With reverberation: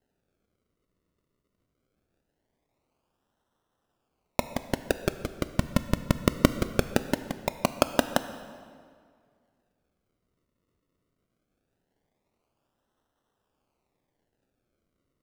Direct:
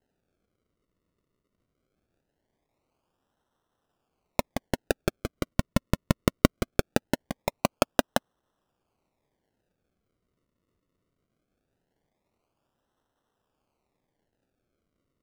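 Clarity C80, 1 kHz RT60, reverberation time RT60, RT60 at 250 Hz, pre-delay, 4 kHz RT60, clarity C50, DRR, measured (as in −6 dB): 13.0 dB, 2.0 s, 2.0 s, 2.0 s, 14 ms, 1.6 s, 12.0 dB, 11.0 dB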